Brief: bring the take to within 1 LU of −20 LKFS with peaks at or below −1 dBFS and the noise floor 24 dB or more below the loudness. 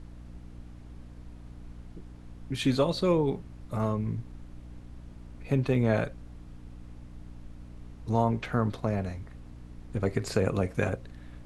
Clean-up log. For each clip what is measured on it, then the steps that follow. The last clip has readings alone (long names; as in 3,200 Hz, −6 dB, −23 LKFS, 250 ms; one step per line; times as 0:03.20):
mains hum 60 Hz; hum harmonics up to 300 Hz; level of the hum −45 dBFS; background noise floor −47 dBFS; target noise floor −54 dBFS; integrated loudness −29.5 LKFS; sample peak −11.0 dBFS; target loudness −20.0 LKFS
→ hum removal 60 Hz, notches 5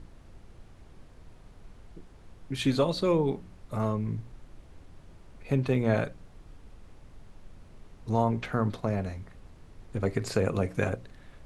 mains hum none found; background noise floor −53 dBFS; target noise floor −54 dBFS
→ noise reduction from a noise print 6 dB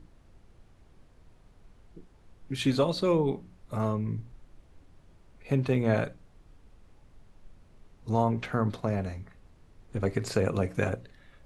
background noise floor −59 dBFS; integrated loudness −29.5 LKFS; sample peak −11.5 dBFS; target loudness −20.0 LKFS
→ level +9.5 dB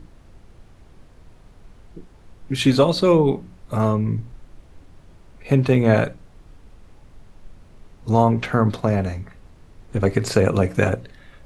integrated loudness −20.0 LKFS; sample peak −2.0 dBFS; background noise floor −49 dBFS